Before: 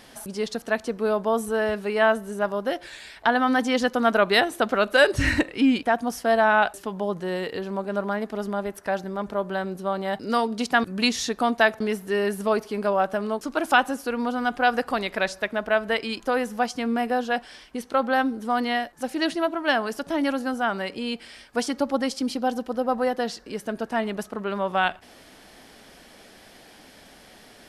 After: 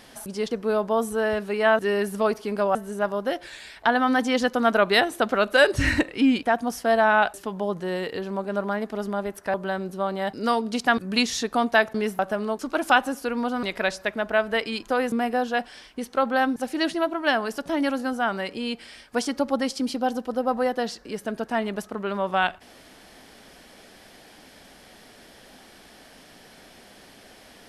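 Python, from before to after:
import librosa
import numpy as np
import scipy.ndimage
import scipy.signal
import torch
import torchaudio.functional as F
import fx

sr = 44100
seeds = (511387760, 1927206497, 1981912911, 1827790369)

y = fx.edit(x, sr, fx.cut(start_s=0.51, length_s=0.36),
    fx.cut(start_s=8.94, length_s=0.46),
    fx.move(start_s=12.05, length_s=0.96, to_s=2.15),
    fx.cut(start_s=14.45, length_s=0.55),
    fx.cut(start_s=16.49, length_s=0.4),
    fx.cut(start_s=18.33, length_s=0.64), tone=tone)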